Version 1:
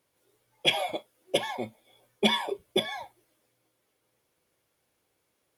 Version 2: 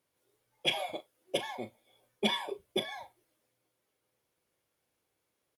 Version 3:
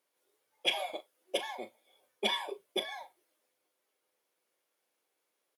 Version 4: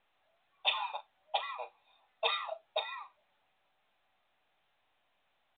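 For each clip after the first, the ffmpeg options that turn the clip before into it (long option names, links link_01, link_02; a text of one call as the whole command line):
ffmpeg -i in.wav -filter_complex "[0:a]asplit=2[link_01][link_02];[link_02]adelay=39,volume=-13dB[link_03];[link_01][link_03]amix=inputs=2:normalize=0,volume=-6dB" out.wav
ffmpeg -i in.wav -af "highpass=370" out.wav
ffmpeg -i in.wav -af "afreqshift=250" -ar 8000 -c:a pcm_mulaw out.wav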